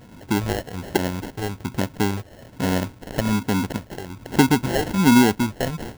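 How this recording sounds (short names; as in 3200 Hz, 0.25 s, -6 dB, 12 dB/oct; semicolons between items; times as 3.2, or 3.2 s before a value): phasing stages 2, 1.2 Hz, lowest notch 220–2100 Hz; aliases and images of a low sample rate 1200 Hz, jitter 0%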